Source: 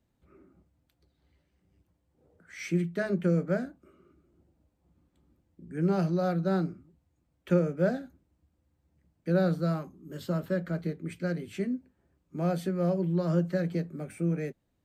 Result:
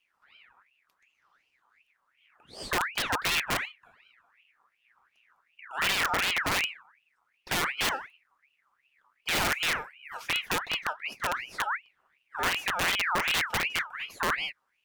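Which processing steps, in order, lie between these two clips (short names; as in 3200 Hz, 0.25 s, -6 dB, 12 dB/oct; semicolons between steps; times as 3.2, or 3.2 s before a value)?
wrapped overs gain 21.5 dB; ring modulator with a swept carrier 1900 Hz, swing 45%, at 2.7 Hz; gain +3 dB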